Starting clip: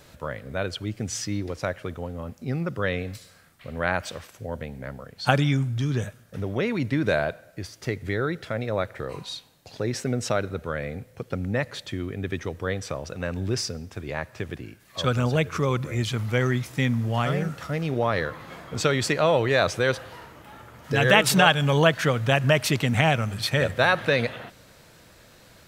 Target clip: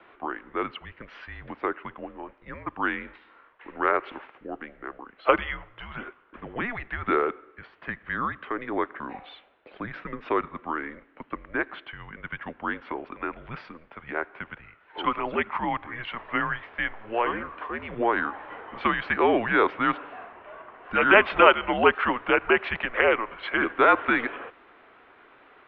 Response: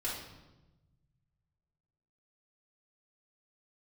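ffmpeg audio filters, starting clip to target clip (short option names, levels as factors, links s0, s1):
-filter_complex "[0:a]highpass=f=240:t=q:w=0.5412,highpass=f=240:t=q:w=1.307,lowpass=f=3400:t=q:w=0.5176,lowpass=f=3400:t=q:w=0.7071,lowpass=f=3400:t=q:w=1.932,afreqshift=-230,acrossover=split=380 2500:gain=0.141 1 0.178[s0][s1][s2];[s0][s1][s2]amix=inputs=3:normalize=0,volume=1.68"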